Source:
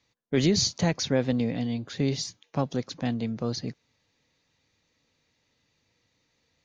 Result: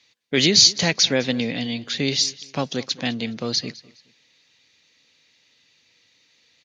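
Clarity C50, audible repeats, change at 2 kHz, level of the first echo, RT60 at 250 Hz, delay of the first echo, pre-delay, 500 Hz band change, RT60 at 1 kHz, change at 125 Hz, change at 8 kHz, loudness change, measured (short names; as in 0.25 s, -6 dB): none, 2, +11.5 dB, -20.5 dB, none, 0.208 s, none, +3.0 dB, none, -1.0 dB, +11.5 dB, +8.0 dB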